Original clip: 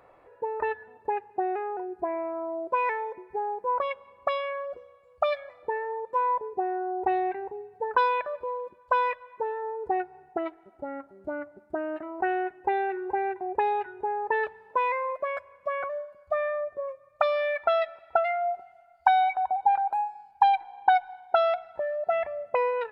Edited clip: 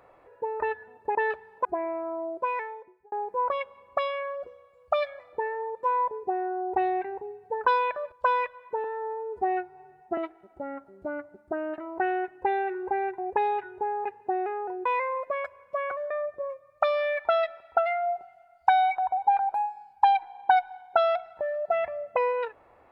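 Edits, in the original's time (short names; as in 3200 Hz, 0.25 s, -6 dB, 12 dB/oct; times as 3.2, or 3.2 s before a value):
1.15–1.95 swap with 14.28–14.78
2.53–3.42 fade out
8.42–8.79 cut
9.51–10.4 stretch 1.5×
16.03–16.49 cut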